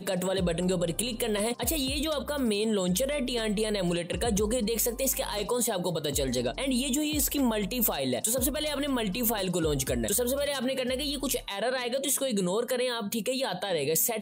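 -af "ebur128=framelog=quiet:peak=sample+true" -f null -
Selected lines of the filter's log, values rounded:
Integrated loudness:
  I:         -28.2 LUFS
  Threshold: -38.2 LUFS
Loudness range:
  LRA:         1.1 LU
  Threshold: -48.1 LUFS
  LRA low:   -28.6 LUFS
  LRA high:  -27.5 LUFS
Sample peak:
  Peak:      -12.2 dBFS
True peak:
  Peak:      -12.1 dBFS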